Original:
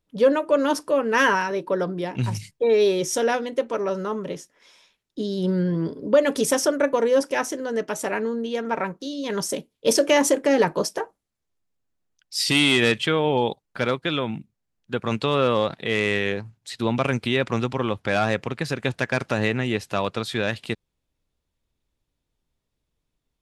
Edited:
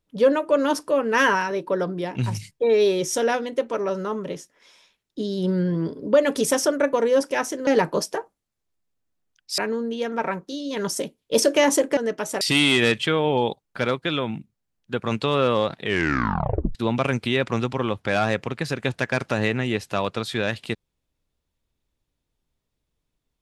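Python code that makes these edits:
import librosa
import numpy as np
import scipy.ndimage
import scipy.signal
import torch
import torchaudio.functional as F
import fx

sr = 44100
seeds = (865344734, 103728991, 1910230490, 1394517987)

y = fx.edit(x, sr, fx.swap(start_s=7.67, length_s=0.44, other_s=10.5, other_length_s=1.91),
    fx.tape_stop(start_s=15.83, length_s=0.92), tone=tone)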